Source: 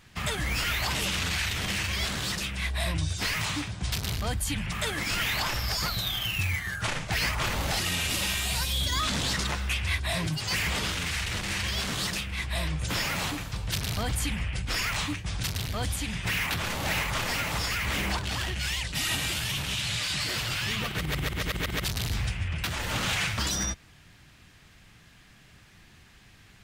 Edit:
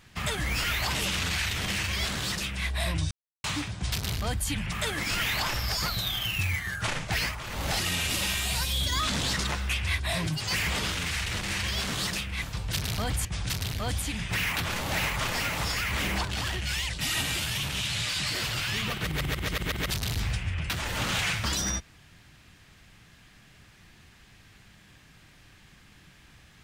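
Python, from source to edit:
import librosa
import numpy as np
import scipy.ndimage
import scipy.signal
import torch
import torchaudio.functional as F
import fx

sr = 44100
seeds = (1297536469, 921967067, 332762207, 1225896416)

y = fx.edit(x, sr, fx.silence(start_s=3.11, length_s=0.33),
    fx.fade_down_up(start_s=7.17, length_s=0.53, db=-10.5, fade_s=0.25),
    fx.cut(start_s=12.42, length_s=0.99),
    fx.cut(start_s=14.24, length_s=0.95), tone=tone)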